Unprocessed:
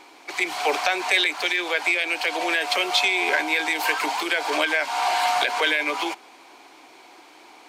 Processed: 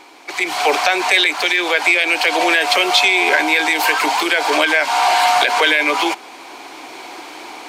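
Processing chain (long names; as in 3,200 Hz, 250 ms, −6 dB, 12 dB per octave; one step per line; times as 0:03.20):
in parallel at −2 dB: brickwall limiter −18.5 dBFS, peak gain reduction 11.5 dB
on the sum: automatic gain control gain up to 10 dB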